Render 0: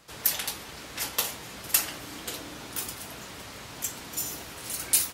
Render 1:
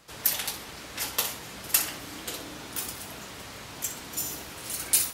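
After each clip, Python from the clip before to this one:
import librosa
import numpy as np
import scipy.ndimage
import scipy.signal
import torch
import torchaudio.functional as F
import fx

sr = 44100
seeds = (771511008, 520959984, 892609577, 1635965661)

y = fx.room_flutter(x, sr, wall_m=10.8, rt60_s=0.32)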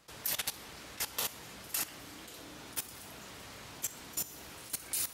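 y = fx.level_steps(x, sr, step_db=16)
y = y * 10.0 ** (-1.0 / 20.0)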